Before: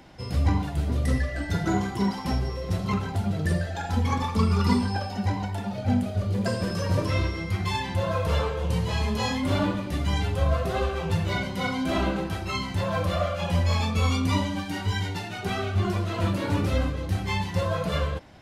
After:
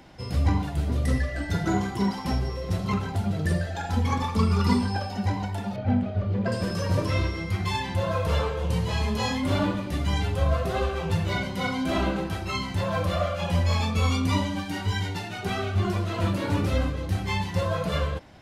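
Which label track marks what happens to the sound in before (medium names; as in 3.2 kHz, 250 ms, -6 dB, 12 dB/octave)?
5.760000	6.520000	low-pass 2.6 kHz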